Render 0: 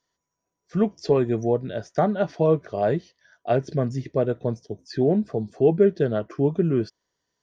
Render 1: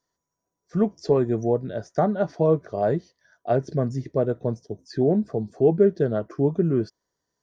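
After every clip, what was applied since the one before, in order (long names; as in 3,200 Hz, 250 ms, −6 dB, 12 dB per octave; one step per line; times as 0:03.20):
parametric band 2,800 Hz −10 dB 1 octave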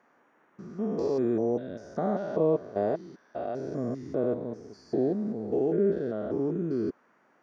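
spectrum averaged block by block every 200 ms
noise in a band 120–1,700 Hz −63 dBFS
low shelf with overshoot 180 Hz −7 dB, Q 1.5
level −2.5 dB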